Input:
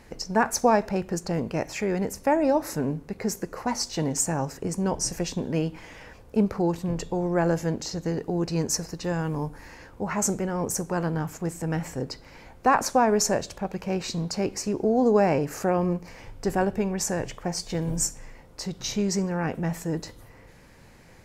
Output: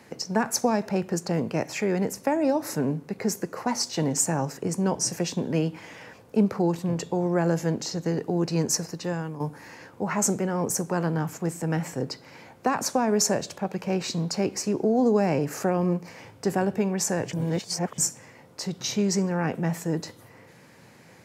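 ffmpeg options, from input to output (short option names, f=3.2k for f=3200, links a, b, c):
-filter_complex "[0:a]asplit=4[a][b][c][d];[a]atrim=end=9.4,asetpts=PTS-STARTPTS,afade=t=out:st=8.72:d=0.68:c=qsin:silence=0.266073[e];[b]atrim=start=9.4:end=17.332,asetpts=PTS-STARTPTS,afade=t=in:d=0.004:c=hsin:silence=0.266073[f];[c]atrim=start=17.328:end=17.982,asetpts=PTS-STARTPTS,areverse[g];[d]atrim=start=17.978[h];[e][f]concat=n=2:v=0:a=1[i];[i][g]acrossfade=d=0.004:c1=hsin:c2=hsin[j];[j][h]acrossfade=d=0.004:c1=hsin:c2=hsin,highpass=f=110:w=0.5412,highpass=f=110:w=1.3066,acrossover=split=300|3000[k][l][m];[l]acompressor=threshold=-24dB:ratio=6[n];[k][n][m]amix=inputs=3:normalize=0,volume=1.5dB"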